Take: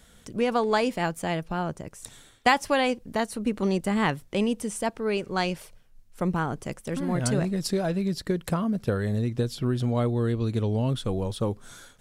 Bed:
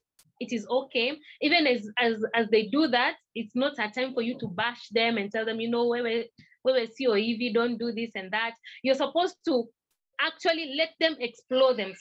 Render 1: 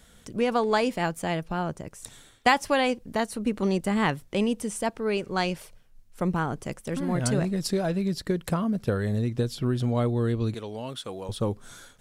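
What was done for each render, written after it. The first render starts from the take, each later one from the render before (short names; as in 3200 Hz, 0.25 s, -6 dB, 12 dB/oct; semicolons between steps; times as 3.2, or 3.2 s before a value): 10.54–11.29 HPF 780 Hz 6 dB/oct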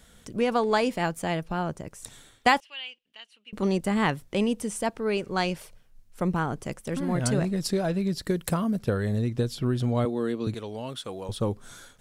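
2.6–3.53 band-pass 2900 Hz, Q 7.5; 8.22–8.79 high shelf 6500 Hz +9.5 dB; 10.05–10.47 HPF 190 Hz 24 dB/oct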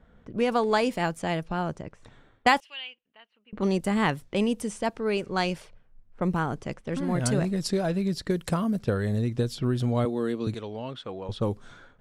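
low-pass opened by the level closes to 1200 Hz, open at -23.5 dBFS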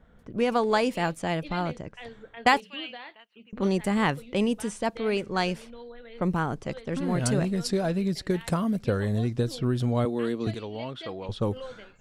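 add bed -18.5 dB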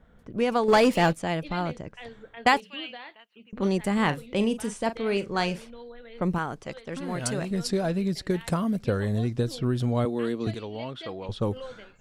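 0.68–1.13 sample leveller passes 2; 3.94–5.64 doubler 40 ms -12 dB; 6.38–7.51 low shelf 430 Hz -7.5 dB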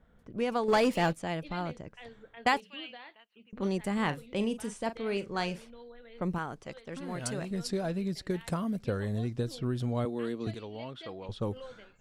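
gain -6 dB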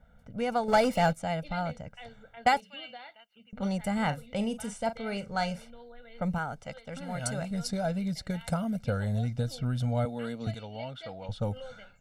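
dynamic EQ 3000 Hz, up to -4 dB, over -48 dBFS, Q 1.7; comb 1.4 ms, depth 86%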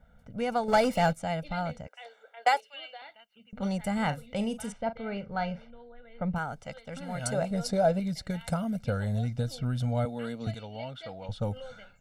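1.87–3.02 steep high-pass 370 Hz; 4.72–6.36 air absorption 300 m; 7.32–8 bell 560 Hz +9 dB 1.6 oct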